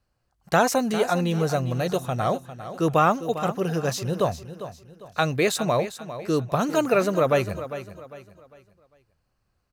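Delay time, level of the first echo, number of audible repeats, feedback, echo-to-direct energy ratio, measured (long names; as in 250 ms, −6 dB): 401 ms, −12.5 dB, 3, 35%, −12.0 dB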